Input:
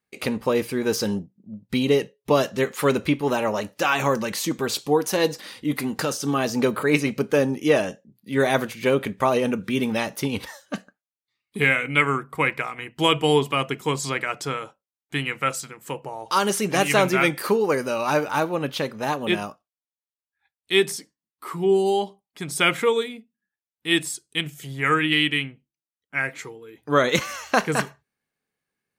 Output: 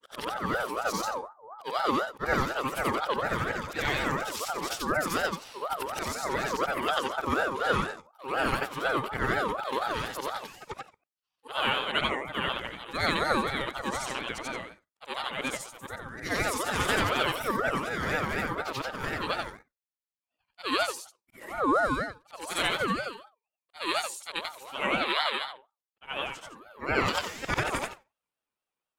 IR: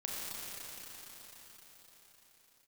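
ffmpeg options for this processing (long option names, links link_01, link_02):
-af "afftfilt=real='re':imag='-im':win_size=8192:overlap=0.75,aeval=exprs='val(0)*sin(2*PI*870*n/s+870*0.25/4.1*sin(2*PI*4.1*n/s))':channel_layout=same"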